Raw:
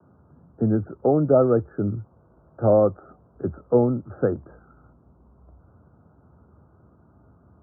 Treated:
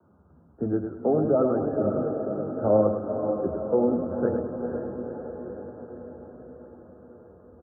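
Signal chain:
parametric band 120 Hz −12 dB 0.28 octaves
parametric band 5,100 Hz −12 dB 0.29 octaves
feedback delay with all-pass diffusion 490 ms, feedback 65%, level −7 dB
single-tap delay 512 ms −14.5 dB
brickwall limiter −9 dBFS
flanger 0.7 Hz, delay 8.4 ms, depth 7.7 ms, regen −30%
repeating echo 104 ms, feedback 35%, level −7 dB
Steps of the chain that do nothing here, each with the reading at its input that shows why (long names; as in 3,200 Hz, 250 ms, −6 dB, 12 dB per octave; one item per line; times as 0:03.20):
parametric band 5,100 Hz: nothing at its input above 1,400 Hz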